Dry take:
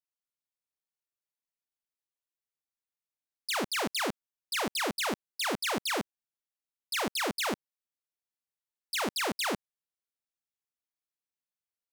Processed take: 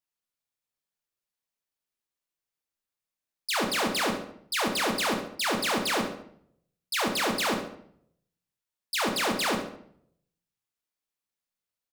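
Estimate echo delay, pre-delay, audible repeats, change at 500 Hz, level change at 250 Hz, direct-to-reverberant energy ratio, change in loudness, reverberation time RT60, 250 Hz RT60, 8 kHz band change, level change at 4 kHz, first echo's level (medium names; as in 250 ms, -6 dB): 70 ms, 9 ms, 1, +4.5 dB, +5.0 dB, 3.0 dB, +4.0 dB, 0.65 s, 0.75 s, +3.5 dB, +4.0 dB, -11.0 dB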